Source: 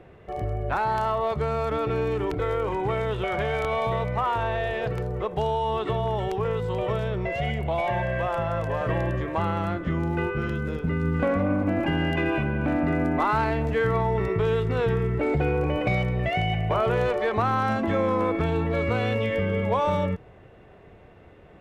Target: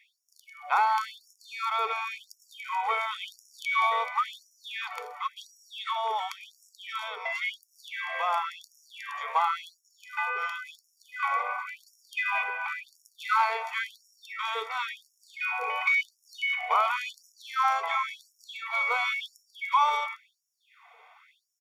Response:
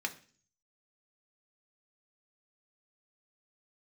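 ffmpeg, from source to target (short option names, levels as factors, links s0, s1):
-filter_complex "[0:a]aecho=1:1:0.9:0.9,asplit=2[s0][s1];[1:a]atrim=start_sample=2205,highshelf=f=5100:g=11.5[s2];[s1][s2]afir=irnorm=-1:irlink=0,volume=0.299[s3];[s0][s3]amix=inputs=2:normalize=0,afftfilt=real='re*gte(b*sr/1024,430*pow(5200/430,0.5+0.5*sin(2*PI*0.94*pts/sr)))':imag='im*gte(b*sr/1024,430*pow(5200/430,0.5+0.5*sin(2*PI*0.94*pts/sr)))':win_size=1024:overlap=0.75,volume=0.841"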